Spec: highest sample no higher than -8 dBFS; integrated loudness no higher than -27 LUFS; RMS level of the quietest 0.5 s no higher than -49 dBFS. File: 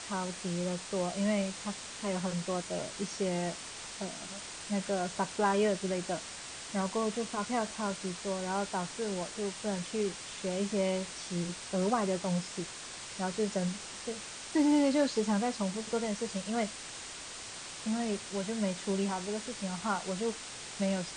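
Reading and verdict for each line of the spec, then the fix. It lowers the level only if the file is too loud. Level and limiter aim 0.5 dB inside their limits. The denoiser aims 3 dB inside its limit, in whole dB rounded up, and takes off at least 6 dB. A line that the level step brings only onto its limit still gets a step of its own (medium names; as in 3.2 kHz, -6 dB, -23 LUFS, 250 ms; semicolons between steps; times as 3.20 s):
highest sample -17.0 dBFS: pass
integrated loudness -34.0 LUFS: pass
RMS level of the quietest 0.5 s -44 dBFS: fail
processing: noise reduction 8 dB, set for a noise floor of -44 dBFS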